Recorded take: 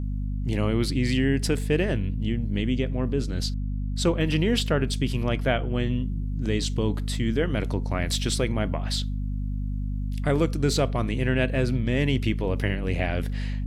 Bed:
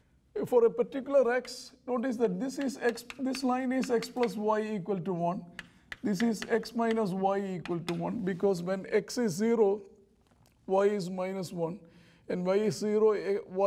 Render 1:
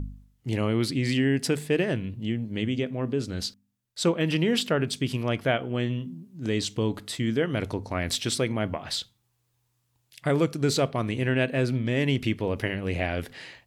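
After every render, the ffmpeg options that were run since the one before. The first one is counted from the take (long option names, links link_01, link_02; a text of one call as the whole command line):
ffmpeg -i in.wav -af "bandreject=frequency=50:width_type=h:width=4,bandreject=frequency=100:width_type=h:width=4,bandreject=frequency=150:width_type=h:width=4,bandreject=frequency=200:width_type=h:width=4,bandreject=frequency=250:width_type=h:width=4" out.wav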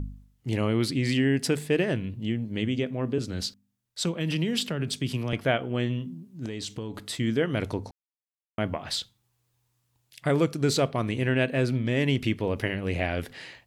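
ffmpeg -i in.wav -filter_complex "[0:a]asettb=1/sr,asplit=3[link_01][link_02][link_03];[link_01]atrim=end=3.184[link_04];[link_02]atrim=start=3.18:end=5.33,asetpts=PTS-STARTPTS,afade=type=in:duration=0.004:curve=qsin,afade=type=out:start_time=2.146:duration=0.004:curve=qsin,acrossover=split=230|3000[link_05][link_06][link_07];[link_06]acompressor=threshold=-31dB:ratio=6:attack=3.2:release=140:knee=2.83:detection=peak[link_08];[link_05][link_08][link_07]amix=inputs=3:normalize=0[link_09];[link_03]atrim=start=5.326[link_10];[link_04][link_09]acrossfade=duration=0.004:curve1=hsin:curve2=qsin[link_11];[link_11][link_10]acrossfade=duration=0.004:curve1=qsin:curve2=hsin,asettb=1/sr,asplit=3[link_12][link_13][link_14];[link_12]atrim=end=6.454[link_15];[link_13]atrim=start=6.45:end=7.08,asetpts=PTS-STARTPTS,afade=type=in:duration=0.004:curve=qsin,afade=type=out:start_time=0.626:duration=0.004:curve=qsin,acompressor=threshold=-30dB:ratio=6:attack=3.2:release=140:knee=1:detection=peak[link_16];[link_14]atrim=start=7.076[link_17];[link_15][link_16]acrossfade=duration=0.004:curve1=hsin:curve2=qsin[link_18];[link_18][link_17]acrossfade=duration=0.004:curve1=qsin:curve2=hsin,asplit=3[link_19][link_20][link_21];[link_19]atrim=end=7.91,asetpts=PTS-STARTPTS,afade=type=out:start_time=7.906:duration=0.004:curve=hsin[link_22];[link_20]atrim=start=7.91:end=8.58,asetpts=PTS-STARTPTS,volume=0[link_23];[link_21]atrim=start=8.58,asetpts=PTS-STARTPTS,afade=type=in:duration=0.004:curve=hsin[link_24];[link_22][link_23][link_24]concat=n=3:v=0:a=1" out.wav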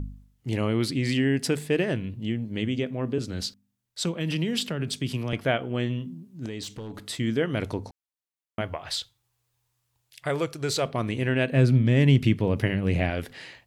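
ffmpeg -i in.wav -filter_complex "[0:a]asettb=1/sr,asplit=3[link_01][link_02][link_03];[link_01]atrim=end=6.634[link_04];[link_02]atrim=start=6.63:end=7.06,asetpts=PTS-STARTPTS,afade=type=in:duration=0.004:curve=qsin,afade=type=out:start_time=0.426:duration=0.004:curve=qsin,asoftclip=type=hard:threshold=-32.5dB[link_05];[link_03]atrim=start=7.056[link_06];[link_04][link_05]acrossfade=duration=0.004:curve1=hsin:curve2=qsin[link_07];[link_07][link_06]acrossfade=duration=0.004:curve1=qsin:curve2=hsin,asettb=1/sr,asplit=3[link_08][link_09][link_10];[link_08]atrim=end=8.614[link_11];[link_09]atrim=start=8.61:end=10.86,asetpts=PTS-STARTPTS,afade=type=in:duration=0.004:curve=qsin,afade=type=out:start_time=2.246:duration=0.004:curve=qsin,equalizer=frequency=220:width=1.5:gain=-14.5[link_12];[link_10]atrim=start=10.856[link_13];[link_11][link_12]acrossfade=duration=0.004:curve1=hsin:curve2=qsin[link_14];[link_14][link_13]acrossfade=duration=0.004:curve1=qsin:curve2=hsin,asettb=1/sr,asplit=3[link_15][link_16][link_17];[link_15]atrim=end=11.524[link_18];[link_16]atrim=start=11.52:end=13.1,asetpts=PTS-STARTPTS,afade=type=in:duration=0.004:curve=qsin,afade=type=out:start_time=1.576:duration=0.004:curve=qsin,equalizer=frequency=140:width=0.87:gain=9[link_19];[link_17]atrim=start=13.096[link_20];[link_18][link_19]acrossfade=duration=0.004:curve1=hsin:curve2=qsin[link_21];[link_21][link_20]acrossfade=duration=0.004:curve1=qsin:curve2=hsin" out.wav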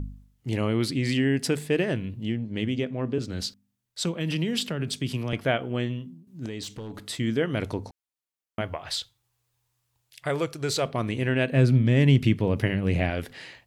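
ffmpeg -i in.wav -filter_complex "[0:a]asettb=1/sr,asplit=3[link_01][link_02][link_03];[link_01]atrim=end=2.274[link_04];[link_02]atrim=start=2.27:end=3.3,asetpts=PTS-STARTPTS,afade=type=in:duration=0.004:curve=qsin,afade=type=out:start_time=1.026:duration=0.004:curve=qsin,adynamicsmooth=sensitivity=8:basefreq=7900[link_05];[link_03]atrim=start=3.296[link_06];[link_04][link_05]acrossfade=duration=0.004:curve1=hsin:curve2=qsin[link_07];[link_07][link_06]acrossfade=duration=0.004:curve1=qsin:curve2=hsin,asplit=2[link_08][link_09];[link_08]atrim=end=6.27,asetpts=PTS-STARTPTS,afade=type=out:start_time=5.77:duration=0.5:silence=0.316228[link_10];[link_09]atrim=start=6.27,asetpts=PTS-STARTPTS,afade=type=in:duration=0.004:curve=hsin:silence=0.316228[link_11];[link_10][link_11]concat=n=2:v=0:a=1" out.wav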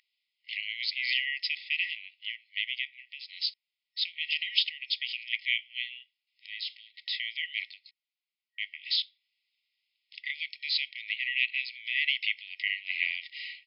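ffmpeg -i in.wav -af "afftfilt=real='re*between(b*sr/4096,1900,5300)':imag='im*between(b*sr/4096,1900,5300)':win_size=4096:overlap=0.75,equalizer=frequency=2500:width=0.85:gain=6.5" out.wav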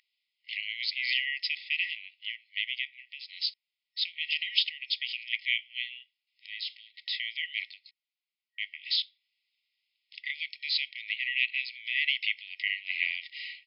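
ffmpeg -i in.wav -af anull out.wav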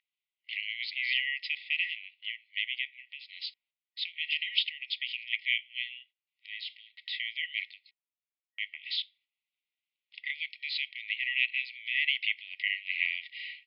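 ffmpeg -i in.wav -af "agate=range=-10dB:threshold=-58dB:ratio=16:detection=peak,lowpass=frequency=3600:width=0.5412,lowpass=frequency=3600:width=1.3066" out.wav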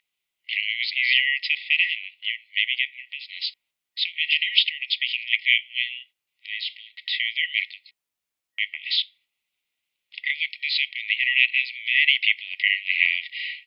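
ffmpeg -i in.wav -af "volume=10dB,alimiter=limit=-3dB:level=0:latency=1" out.wav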